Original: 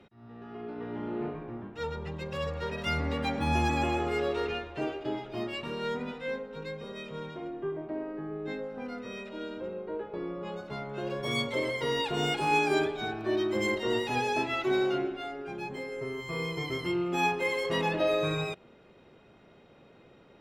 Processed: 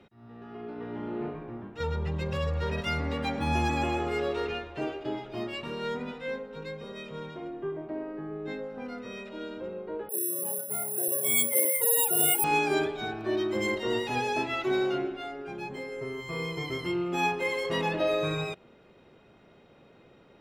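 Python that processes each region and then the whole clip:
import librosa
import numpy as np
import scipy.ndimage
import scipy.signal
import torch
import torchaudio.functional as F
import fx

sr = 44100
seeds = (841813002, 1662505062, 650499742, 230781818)

y = fx.chain(x, sr, fx.peak_eq(hz=91.0, db=9.5, octaves=1.2),
    fx.env_flatten(amount_pct=50), at=(1.8, 2.81))
y = fx.chain(y, sr, fx.spec_expand(power=1.9),
    fx.resample_bad(factor=4, down='none', up='zero_stuff'),
    fx.highpass(hz=290.0, slope=6), at=(10.09, 12.44))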